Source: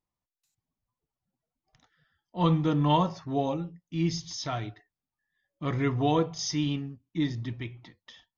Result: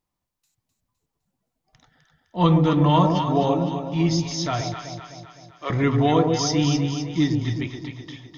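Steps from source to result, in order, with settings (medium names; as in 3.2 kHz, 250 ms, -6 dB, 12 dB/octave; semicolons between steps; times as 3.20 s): 4.61–5.70 s: high-pass 440 Hz 24 dB/octave; echo whose repeats swap between lows and highs 128 ms, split 820 Hz, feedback 72%, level -4 dB; loudness maximiser +13.5 dB; trim -7 dB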